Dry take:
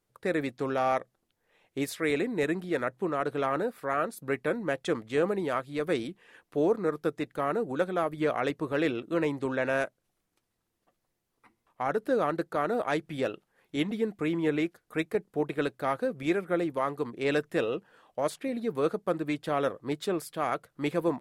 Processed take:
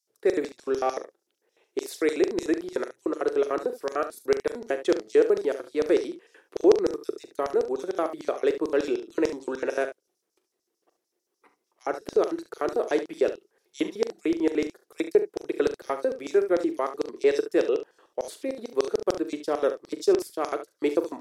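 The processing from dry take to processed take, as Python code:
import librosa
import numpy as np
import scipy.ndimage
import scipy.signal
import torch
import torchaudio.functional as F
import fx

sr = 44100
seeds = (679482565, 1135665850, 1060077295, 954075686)

y = fx.filter_lfo_highpass(x, sr, shape='square', hz=6.7, low_hz=380.0, high_hz=5500.0, q=4.3)
y = fx.room_early_taps(y, sr, ms=(41, 71), db=(-12.0, -12.0))
y = F.gain(torch.from_numpy(y), -1.0).numpy()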